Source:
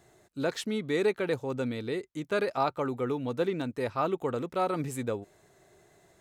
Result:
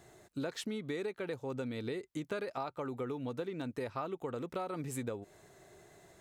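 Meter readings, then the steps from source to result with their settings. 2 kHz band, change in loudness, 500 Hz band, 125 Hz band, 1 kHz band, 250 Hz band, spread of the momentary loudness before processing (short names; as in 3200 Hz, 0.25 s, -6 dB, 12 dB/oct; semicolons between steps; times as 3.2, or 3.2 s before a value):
-9.0 dB, -8.5 dB, -9.0 dB, -6.5 dB, -10.0 dB, -7.0 dB, 6 LU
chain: compressor 10:1, threshold -37 dBFS, peak gain reduction 15.5 dB; gain +2 dB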